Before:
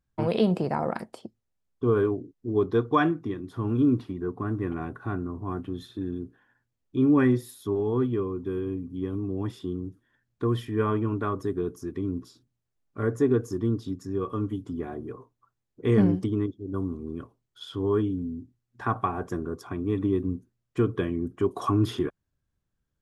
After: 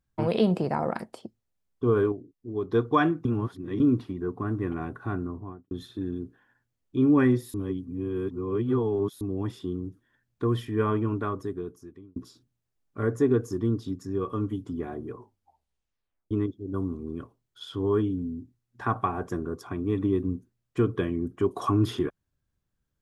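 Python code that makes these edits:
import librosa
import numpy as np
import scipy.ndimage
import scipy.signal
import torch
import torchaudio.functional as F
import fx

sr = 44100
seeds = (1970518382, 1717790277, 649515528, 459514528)

y = fx.studio_fade_out(x, sr, start_s=5.23, length_s=0.48)
y = fx.edit(y, sr, fx.clip_gain(start_s=2.12, length_s=0.59, db=-6.5),
    fx.reverse_span(start_s=3.25, length_s=0.55),
    fx.reverse_span(start_s=7.54, length_s=1.67),
    fx.fade_out_span(start_s=11.11, length_s=1.05),
    fx.tape_stop(start_s=15.14, length_s=1.17), tone=tone)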